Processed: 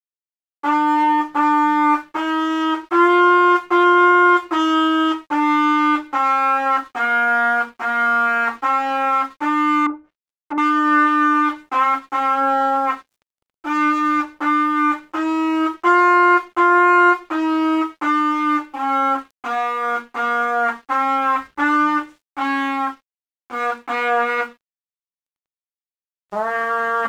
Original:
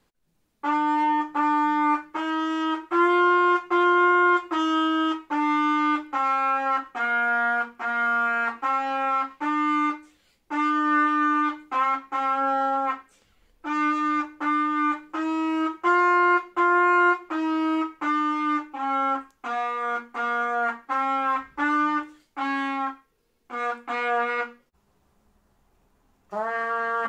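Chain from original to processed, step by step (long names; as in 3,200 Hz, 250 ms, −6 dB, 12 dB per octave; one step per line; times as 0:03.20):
dead-zone distortion −53 dBFS
0:09.86–0:10.58: treble cut that deepens with the level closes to 630 Hz, closed at −28.5 dBFS
level +6.5 dB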